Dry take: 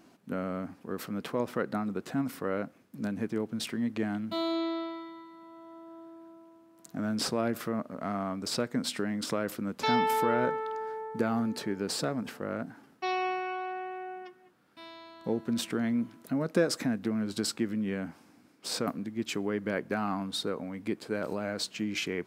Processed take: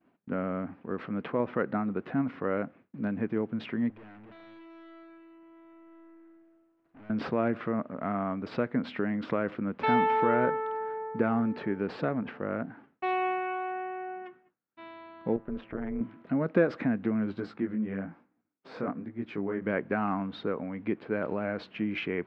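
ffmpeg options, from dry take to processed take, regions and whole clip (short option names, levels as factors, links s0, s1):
-filter_complex "[0:a]asettb=1/sr,asplit=3[s0][s1][s2];[s0]atrim=end=3.904[s3];[s1]atrim=start=3.9:end=7.1,asetpts=PTS-STARTPTS,afade=t=in:d=0.004:c=qsin,afade=t=out:st=3.196:d=0.004:c=qsin,equalizer=f=190:w=1.8:g=-10,aecho=1:1:273|546|819:0.447|0.0804|0.0145,atrim=end_sample=141120,aeval=exprs='(tanh(316*val(0)+0.2)-tanh(0.2))/316':c=same[s4];[s2]atrim=start=7.096[s5];[s3][s4]acrossfade=d=0.004:c1=hsin:c2=qsin[s6];[s6][s5]acrossfade=d=0.004:c1=qsin:c2=hsin,asettb=1/sr,asplit=3[s7][s8][s9];[s7]atrim=end=15.364[s10];[s8]atrim=start=15.36:end=16.01,asetpts=PTS-STARTPTS,afade=t=in:d=0.004:c=qsin,afade=t=out:st=0.646:d=0.004:c=qsin,lowpass=f=1200:p=1,lowshelf=f=350:g=-5,tremolo=f=210:d=0.824[s11];[s9]atrim=start=16.006[s12];[s10][s11]acrossfade=d=0.004:c1=hsin:c2=qsin[s13];[s13][s12]acrossfade=d=0.004:c1=qsin:c2=hsin,asettb=1/sr,asplit=3[s14][s15][s16];[s14]atrim=end=17.364[s17];[s15]atrim=start=17.36:end=19.62,asetpts=PTS-STARTPTS,afade=t=in:d=0.004:c=qsin,afade=t=out:st=2.256:d=0.004:c=qsin,equalizer=f=2900:t=o:w=0.74:g=-7,flanger=delay=16:depth=6.9:speed=1.1[s18];[s16]atrim=start=19.616[s19];[s17][s18]acrossfade=d=0.004:c1=hsin:c2=qsin[s20];[s20][s19]acrossfade=d=0.004:c1=qsin:c2=hsin,agate=range=0.0224:threshold=0.00316:ratio=3:detection=peak,lowpass=f=2600:w=0.5412,lowpass=f=2600:w=1.3066,volume=1.26"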